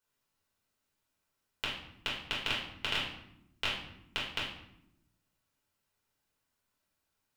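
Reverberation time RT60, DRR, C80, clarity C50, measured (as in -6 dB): 0.80 s, -6.5 dB, 7.5 dB, 4.0 dB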